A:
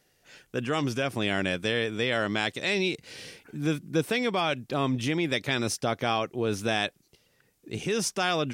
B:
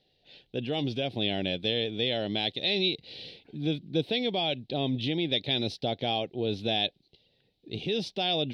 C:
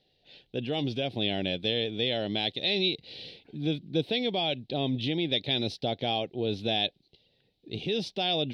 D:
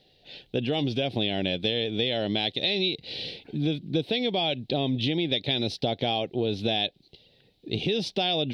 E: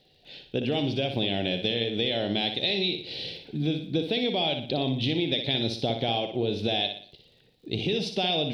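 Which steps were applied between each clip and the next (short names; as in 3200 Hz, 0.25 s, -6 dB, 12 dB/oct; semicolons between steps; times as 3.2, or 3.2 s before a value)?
EQ curve 780 Hz 0 dB, 1200 Hz -22 dB, 3900 Hz +10 dB, 6800 Hz -24 dB; gain -2 dB
nothing audible
compressor 4:1, threshold -32 dBFS, peak gain reduction 9 dB; gain +8.5 dB
crackle 35/s -51 dBFS; flutter echo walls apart 10.3 m, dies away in 0.49 s; gain -1 dB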